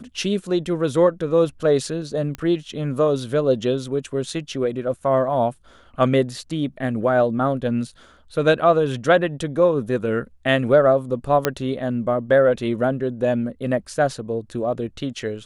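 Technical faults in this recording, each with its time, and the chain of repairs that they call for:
2.35 pop -16 dBFS
11.45 pop -3 dBFS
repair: de-click

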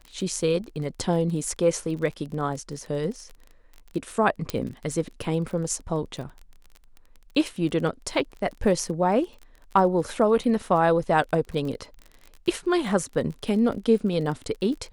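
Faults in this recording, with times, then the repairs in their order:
crackle 28/s -33 dBFS
4.5 pop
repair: de-click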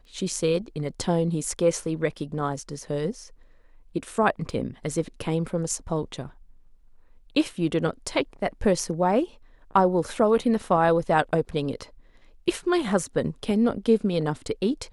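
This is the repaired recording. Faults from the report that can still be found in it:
4.5 pop

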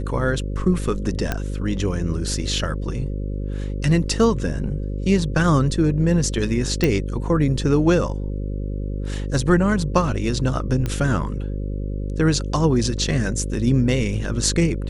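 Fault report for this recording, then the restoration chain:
buzz 50 Hz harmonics 11 -26 dBFS
1.32 pop -8 dBFS
6.84 pop
10.86 pop -12 dBFS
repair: de-click; de-hum 50 Hz, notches 11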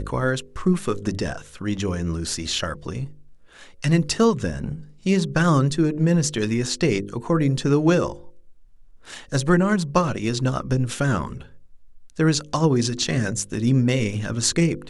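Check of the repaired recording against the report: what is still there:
10.86 pop

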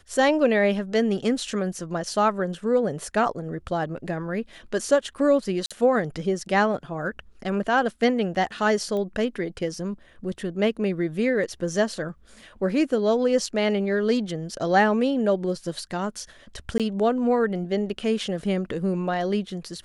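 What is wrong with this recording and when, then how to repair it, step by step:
5.66–5.71 gap 46 ms
8.97 pop -20 dBFS
16.78–16.8 gap 17 ms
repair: de-click; interpolate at 5.66, 46 ms; interpolate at 16.78, 17 ms

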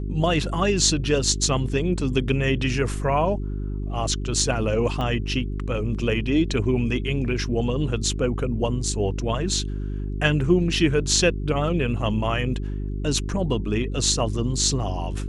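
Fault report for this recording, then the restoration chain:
hum 50 Hz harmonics 8 -28 dBFS
5.01 pop -17 dBFS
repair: de-click; de-hum 50 Hz, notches 8

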